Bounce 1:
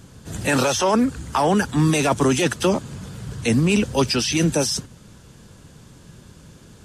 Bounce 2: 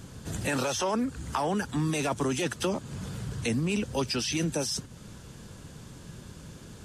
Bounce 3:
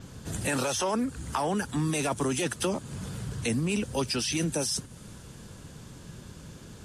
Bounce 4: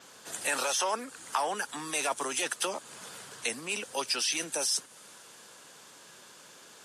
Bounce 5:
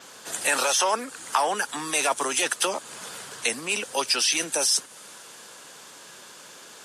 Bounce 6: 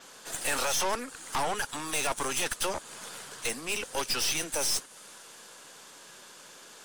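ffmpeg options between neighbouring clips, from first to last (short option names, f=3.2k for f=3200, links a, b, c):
-af "acompressor=threshold=-34dB:ratio=2"
-af "adynamicequalizer=threshold=0.00158:dfrequency=9700:dqfactor=2.1:tfrequency=9700:tqfactor=2.1:attack=5:release=100:ratio=0.375:range=4:mode=boostabove:tftype=bell"
-af "highpass=660,volume=1.5dB"
-af "lowshelf=f=200:g=-4,volume=7dB"
-af "aeval=exprs='(tanh(17.8*val(0)+0.75)-tanh(0.75))/17.8':c=same"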